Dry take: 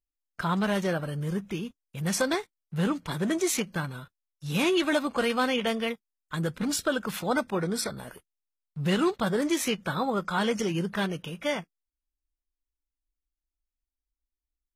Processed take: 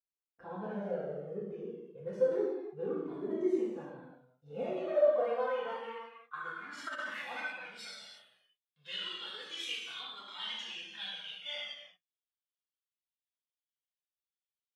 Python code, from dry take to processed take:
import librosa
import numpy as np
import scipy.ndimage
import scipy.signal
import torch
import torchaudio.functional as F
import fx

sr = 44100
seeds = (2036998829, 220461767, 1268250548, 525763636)

y = fx.high_shelf(x, sr, hz=6300.0, db=-5.5)
y = fx.rev_gated(y, sr, seeds[0], gate_ms=390, shape='falling', drr_db=-7.5)
y = fx.filter_sweep_bandpass(y, sr, from_hz=420.0, to_hz=3300.0, start_s=4.39, end_s=8.11, q=4.4)
y = fx.over_compress(y, sr, threshold_db=-33.0, ratio=-0.5, at=(6.77, 7.51), fade=0.02)
y = fx.comb_cascade(y, sr, direction='falling', hz=0.29)